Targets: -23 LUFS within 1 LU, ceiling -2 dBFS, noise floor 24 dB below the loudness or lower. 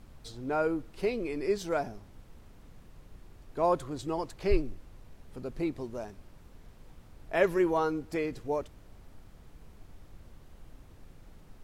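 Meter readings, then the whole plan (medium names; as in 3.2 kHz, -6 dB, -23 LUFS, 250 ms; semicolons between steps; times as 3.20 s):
noise floor -55 dBFS; noise floor target -56 dBFS; loudness -32.0 LUFS; peak level -13.0 dBFS; loudness target -23.0 LUFS
-> noise print and reduce 6 dB; trim +9 dB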